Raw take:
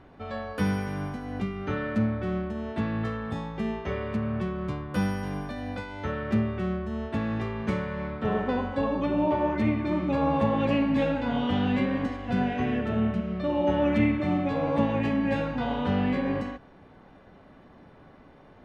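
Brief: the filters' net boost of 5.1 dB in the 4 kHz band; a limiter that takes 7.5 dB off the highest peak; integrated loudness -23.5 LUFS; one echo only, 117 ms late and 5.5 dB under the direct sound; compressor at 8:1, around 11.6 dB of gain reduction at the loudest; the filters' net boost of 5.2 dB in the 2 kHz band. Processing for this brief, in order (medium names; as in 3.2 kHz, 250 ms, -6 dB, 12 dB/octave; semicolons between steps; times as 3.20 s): peaking EQ 2 kHz +5.5 dB; peaking EQ 4 kHz +4.5 dB; compression 8:1, threshold -31 dBFS; peak limiter -29 dBFS; delay 117 ms -5.5 dB; trim +13 dB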